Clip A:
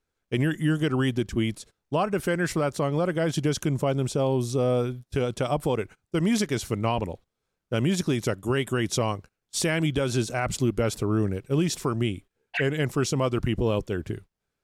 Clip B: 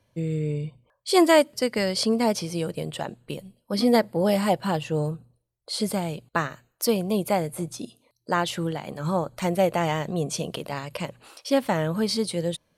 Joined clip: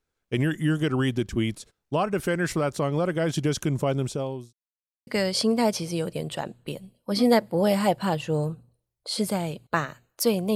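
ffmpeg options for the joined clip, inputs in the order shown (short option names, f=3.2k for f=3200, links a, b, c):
-filter_complex "[0:a]apad=whole_dur=10.55,atrim=end=10.55,asplit=2[a][b];[a]atrim=end=4.53,asetpts=PTS-STARTPTS,afade=t=out:st=3.97:d=0.56[c];[b]atrim=start=4.53:end=5.07,asetpts=PTS-STARTPTS,volume=0[d];[1:a]atrim=start=1.69:end=7.17,asetpts=PTS-STARTPTS,afade=t=in:d=0.004:c=hsin[e];[c][d][e]concat=n=3:v=0:a=1"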